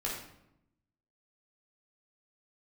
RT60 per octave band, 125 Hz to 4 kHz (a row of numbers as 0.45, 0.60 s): 1.2, 1.1, 0.85, 0.80, 0.65, 0.55 s